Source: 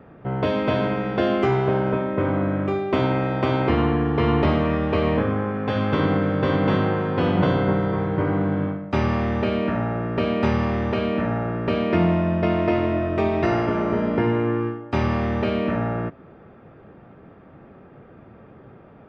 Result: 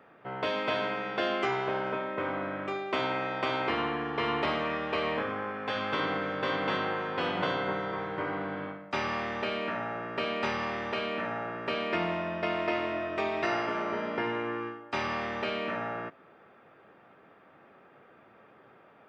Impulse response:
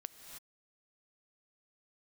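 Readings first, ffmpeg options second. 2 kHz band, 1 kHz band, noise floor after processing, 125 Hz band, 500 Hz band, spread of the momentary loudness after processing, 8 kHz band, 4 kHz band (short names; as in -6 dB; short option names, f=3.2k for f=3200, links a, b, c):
-2.0 dB, -5.0 dB, -58 dBFS, -20.5 dB, -9.5 dB, 5 LU, n/a, -0.5 dB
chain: -af "highpass=f=1.4k:p=1"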